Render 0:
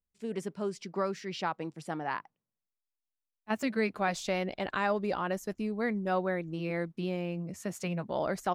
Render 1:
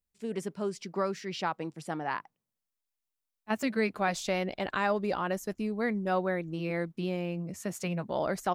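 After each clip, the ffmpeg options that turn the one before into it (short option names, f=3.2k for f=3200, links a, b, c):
-af "highshelf=f=8.4k:g=4,volume=1dB"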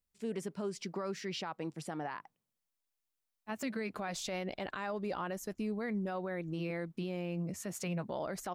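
-af "alimiter=level_in=5dB:limit=-24dB:level=0:latency=1:release=111,volume=-5dB"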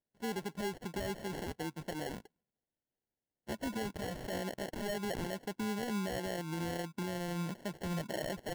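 -af "afftfilt=real='re*between(b*sr/4096,120,6000)':imag='im*between(b*sr/4096,120,6000)':win_size=4096:overlap=0.75,acrusher=samples=36:mix=1:aa=0.000001"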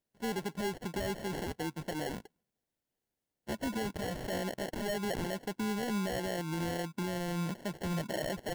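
-af "asoftclip=type=tanh:threshold=-30dB,volume=4dB"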